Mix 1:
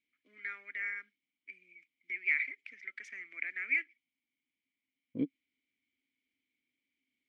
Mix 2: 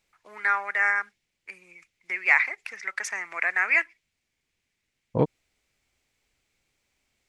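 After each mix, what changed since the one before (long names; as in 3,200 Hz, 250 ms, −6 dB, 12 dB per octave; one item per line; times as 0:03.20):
master: remove formant filter i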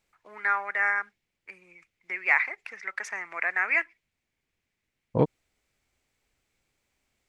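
first voice: add high-shelf EQ 3,400 Hz −11 dB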